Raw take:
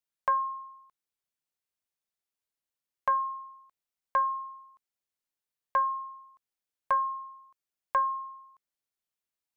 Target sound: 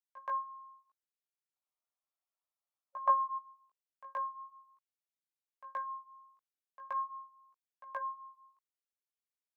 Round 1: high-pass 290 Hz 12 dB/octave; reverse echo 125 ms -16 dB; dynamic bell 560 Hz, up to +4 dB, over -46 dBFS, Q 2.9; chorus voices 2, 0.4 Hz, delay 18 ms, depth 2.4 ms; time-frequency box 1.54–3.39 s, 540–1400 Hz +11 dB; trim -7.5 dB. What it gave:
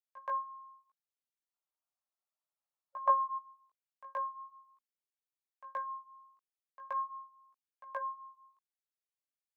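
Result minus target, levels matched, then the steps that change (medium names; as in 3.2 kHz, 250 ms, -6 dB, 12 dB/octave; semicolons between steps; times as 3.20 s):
500 Hz band +3.0 dB
remove: dynamic bell 560 Hz, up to +4 dB, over -46 dBFS, Q 2.9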